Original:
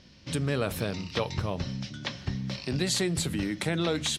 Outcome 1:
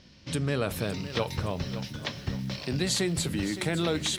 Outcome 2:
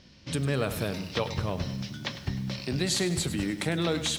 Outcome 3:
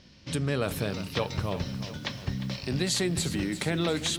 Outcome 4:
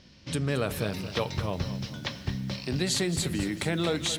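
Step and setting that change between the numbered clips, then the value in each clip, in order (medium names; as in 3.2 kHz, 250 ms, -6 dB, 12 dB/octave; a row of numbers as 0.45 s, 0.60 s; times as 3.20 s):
bit-crushed delay, time: 565 ms, 101 ms, 353 ms, 224 ms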